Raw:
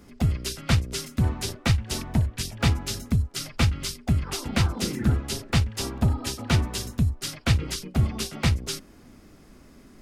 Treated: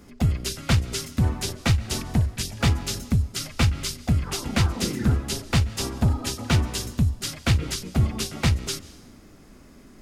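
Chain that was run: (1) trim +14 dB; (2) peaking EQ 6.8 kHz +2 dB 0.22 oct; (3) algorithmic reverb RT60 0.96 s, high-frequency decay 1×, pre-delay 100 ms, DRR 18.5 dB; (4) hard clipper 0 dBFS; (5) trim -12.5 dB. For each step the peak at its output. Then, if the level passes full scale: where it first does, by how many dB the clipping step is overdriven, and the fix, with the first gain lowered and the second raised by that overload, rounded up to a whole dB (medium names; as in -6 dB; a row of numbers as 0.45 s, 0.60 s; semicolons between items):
+6.5 dBFS, +6.5 dBFS, +6.5 dBFS, 0.0 dBFS, -12.5 dBFS; step 1, 6.5 dB; step 1 +7 dB, step 5 -5.5 dB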